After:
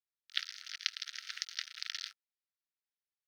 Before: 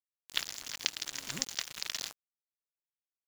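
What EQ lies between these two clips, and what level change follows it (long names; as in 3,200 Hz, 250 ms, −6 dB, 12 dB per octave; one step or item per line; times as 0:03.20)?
Savitzky-Golay smoothing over 15 samples
Chebyshev high-pass with heavy ripple 1,300 Hz, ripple 3 dB
0.0 dB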